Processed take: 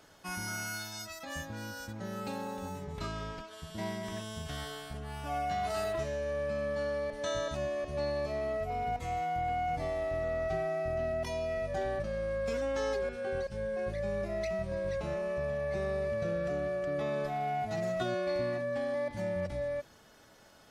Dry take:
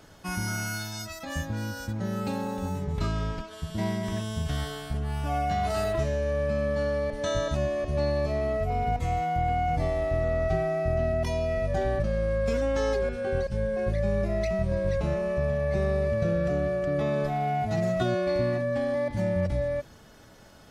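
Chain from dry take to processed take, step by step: bass shelf 240 Hz -10 dB; trim -4 dB

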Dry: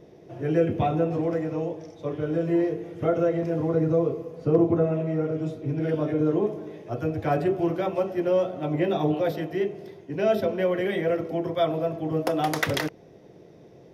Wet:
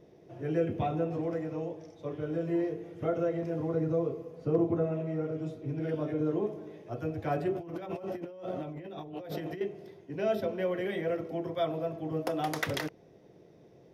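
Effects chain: 7.55–9.61 s: compressor with a negative ratio -33 dBFS, ratio -1; trim -7 dB

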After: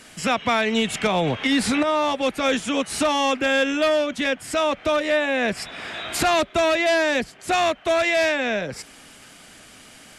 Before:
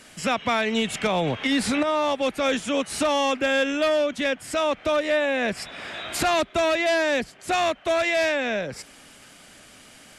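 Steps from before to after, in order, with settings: band-stop 570 Hz, Q 17; trim +2.5 dB

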